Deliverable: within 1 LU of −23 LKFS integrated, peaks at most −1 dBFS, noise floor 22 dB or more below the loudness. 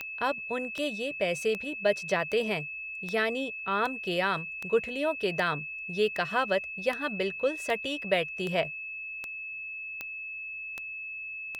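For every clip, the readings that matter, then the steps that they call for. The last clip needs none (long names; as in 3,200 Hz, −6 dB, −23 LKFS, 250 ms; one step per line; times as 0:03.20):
number of clicks 16; interfering tone 2,600 Hz; level of the tone −36 dBFS; integrated loudness −30.5 LKFS; sample peak −12.5 dBFS; target loudness −23.0 LKFS
→ click removal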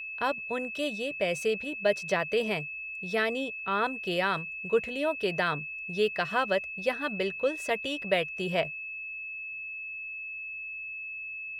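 number of clicks 0; interfering tone 2,600 Hz; level of the tone −36 dBFS
→ notch filter 2,600 Hz, Q 30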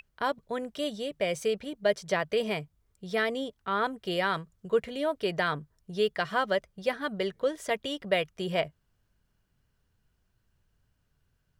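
interfering tone none found; integrated loudness −30.5 LKFS; sample peak −13.0 dBFS; target loudness −23.0 LKFS
→ level +7.5 dB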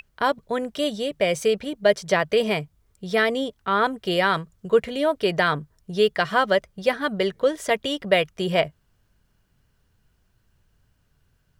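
integrated loudness −23.0 LKFS; sample peak −5.5 dBFS; background noise floor −67 dBFS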